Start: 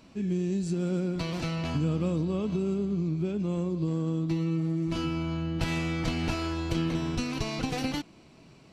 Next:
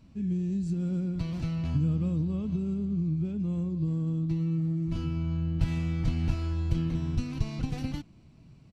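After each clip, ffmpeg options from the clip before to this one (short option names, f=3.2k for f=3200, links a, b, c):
-af "firequalizer=gain_entry='entry(110,0);entry(160,-5);entry(390,-17)':delay=0.05:min_phase=1,volume=6.5dB"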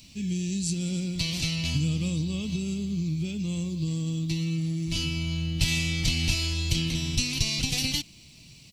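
-af "aexciter=amount=5.6:drive=9.5:freq=2.2k"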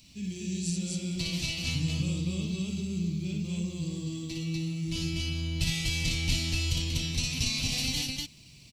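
-af "aecho=1:1:58.31|244.9:0.708|0.891,volume=-6dB"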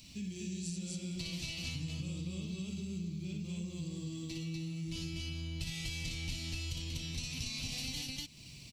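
-af "acompressor=threshold=-42dB:ratio=3,volume=1.5dB"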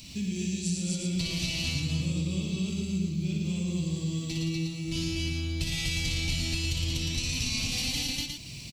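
-af "aecho=1:1:113:0.596,volume=8.5dB"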